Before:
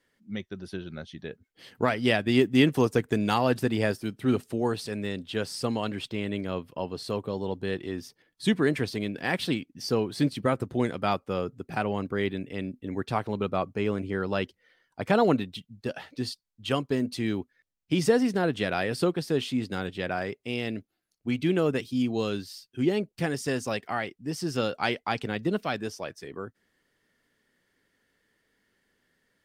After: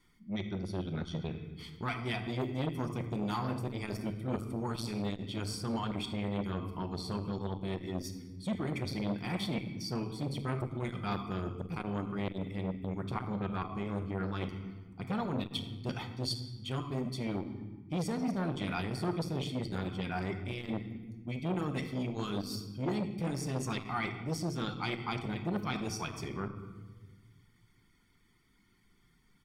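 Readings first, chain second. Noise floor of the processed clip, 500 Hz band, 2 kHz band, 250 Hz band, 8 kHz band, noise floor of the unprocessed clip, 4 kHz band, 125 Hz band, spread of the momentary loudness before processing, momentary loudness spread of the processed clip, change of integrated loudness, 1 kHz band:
−67 dBFS, −11.5 dB, −10.0 dB, −7.5 dB, −5.0 dB, −78 dBFS, −6.5 dB, −2.5 dB, 14 LU, 5 LU, −8.0 dB, −7.5 dB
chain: reverb reduction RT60 0.71 s
low-shelf EQ 120 Hz +10.5 dB
comb filter 0.9 ms, depth 97%
reversed playback
downward compressor 8 to 1, threshold −30 dBFS, peak gain reduction 19 dB
reversed playback
rectangular room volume 1,000 cubic metres, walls mixed, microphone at 0.9 metres
saturating transformer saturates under 660 Hz

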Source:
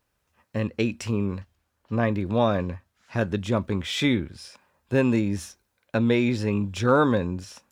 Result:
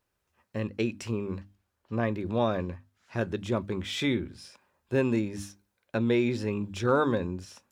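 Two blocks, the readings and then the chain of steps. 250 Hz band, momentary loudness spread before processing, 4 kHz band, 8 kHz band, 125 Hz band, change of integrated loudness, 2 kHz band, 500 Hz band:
−5.0 dB, 13 LU, −5.0 dB, −5.0 dB, −6.0 dB, −4.5 dB, −5.0 dB, −3.5 dB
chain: parametric band 370 Hz +5.5 dB 0.23 octaves
mains-hum notches 50/100/150/200/250/300 Hz
level −5 dB

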